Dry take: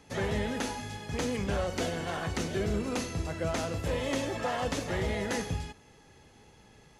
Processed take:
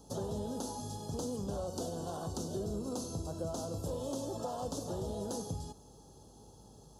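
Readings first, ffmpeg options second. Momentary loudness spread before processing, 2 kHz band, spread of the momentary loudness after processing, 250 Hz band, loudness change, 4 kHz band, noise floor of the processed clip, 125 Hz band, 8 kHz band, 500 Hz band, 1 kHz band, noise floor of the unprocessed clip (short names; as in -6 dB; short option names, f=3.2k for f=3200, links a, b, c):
4 LU, -26.0 dB, 19 LU, -5.5 dB, -6.5 dB, -9.5 dB, -57 dBFS, -6.0 dB, -3.0 dB, -5.5 dB, -7.0 dB, -58 dBFS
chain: -af "highpass=69,highshelf=f=9.5k:g=7.5,acompressor=threshold=-37dB:ratio=3,aeval=exprs='val(0)+0.000708*(sin(2*PI*50*n/s)+sin(2*PI*2*50*n/s)/2+sin(2*PI*3*50*n/s)/3+sin(2*PI*4*50*n/s)/4+sin(2*PI*5*50*n/s)/5)':c=same,asuperstop=centerf=2100:order=4:qfactor=0.63,volume=1dB"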